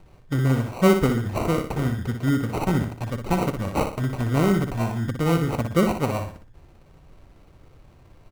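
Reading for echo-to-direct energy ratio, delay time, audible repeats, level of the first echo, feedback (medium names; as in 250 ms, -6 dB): -6.5 dB, 60 ms, 4, -7.0 dB, 38%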